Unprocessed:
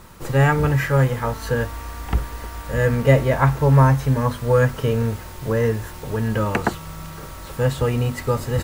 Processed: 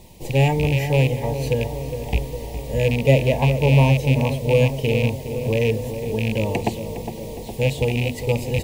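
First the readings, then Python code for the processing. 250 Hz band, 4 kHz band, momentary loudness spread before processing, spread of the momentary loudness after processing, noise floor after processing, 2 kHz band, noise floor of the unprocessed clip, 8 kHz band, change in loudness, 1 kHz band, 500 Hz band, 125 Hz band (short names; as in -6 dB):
0.0 dB, +5.5 dB, 16 LU, 12 LU, -33 dBFS, -1.5 dB, -36 dBFS, -0.5 dB, -0.5 dB, -4.5 dB, +0.5 dB, -0.5 dB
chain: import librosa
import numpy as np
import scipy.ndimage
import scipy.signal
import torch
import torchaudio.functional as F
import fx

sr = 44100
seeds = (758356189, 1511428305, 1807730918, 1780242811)

p1 = fx.rattle_buzz(x, sr, strikes_db=-18.0, level_db=-14.0)
p2 = scipy.signal.sosfilt(scipy.signal.cheby1(2, 1.0, [790.0, 2400.0], 'bandstop', fs=sr, output='sos'), p1)
y = p2 + fx.echo_tape(p2, sr, ms=411, feedback_pct=81, wet_db=-7.5, lp_hz=1100.0, drive_db=2.0, wow_cents=19, dry=0)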